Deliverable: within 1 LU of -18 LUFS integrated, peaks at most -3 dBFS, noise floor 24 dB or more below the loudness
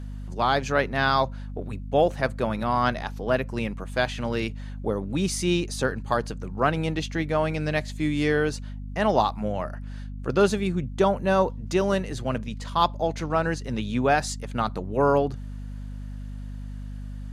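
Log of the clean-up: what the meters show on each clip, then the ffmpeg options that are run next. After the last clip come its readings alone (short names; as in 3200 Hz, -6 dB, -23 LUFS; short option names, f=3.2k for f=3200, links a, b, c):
hum 50 Hz; harmonics up to 250 Hz; hum level -33 dBFS; loudness -25.5 LUFS; peak -7.0 dBFS; loudness target -18.0 LUFS
-> -af "bandreject=f=50:t=h:w=6,bandreject=f=100:t=h:w=6,bandreject=f=150:t=h:w=6,bandreject=f=200:t=h:w=6,bandreject=f=250:t=h:w=6"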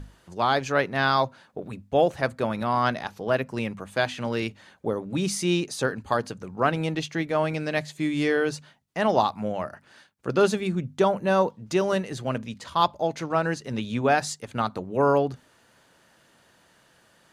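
hum none; loudness -26.0 LUFS; peak -7.5 dBFS; loudness target -18.0 LUFS
-> -af "volume=8dB,alimiter=limit=-3dB:level=0:latency=1"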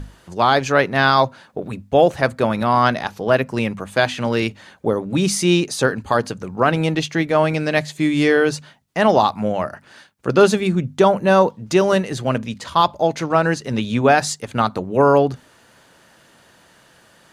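loudness -18.5 LUFS; peak -3.0 dBFS; noise floor -53 dBFS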